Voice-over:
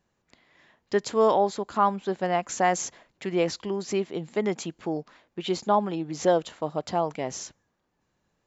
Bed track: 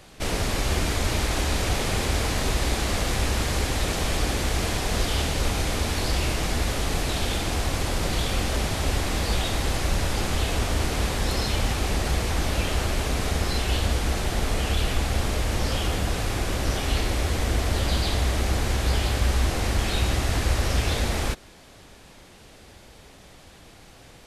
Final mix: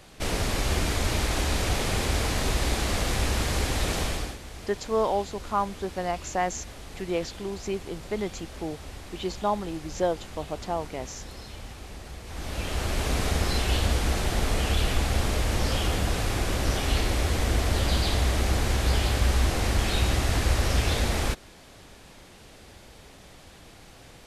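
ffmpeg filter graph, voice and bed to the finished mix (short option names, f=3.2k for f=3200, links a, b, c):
-filter_complex "[0:a]adelay=3750,volume=-4dB[a];[1:a]volume=14.5dB,afade=t=out:st=3.99:d=0.39:silence=0.177828,afade=t=in:st=12.24:d=0.9:silence=0.158489[b];[a][b]amix=inputs=2:normalize=0"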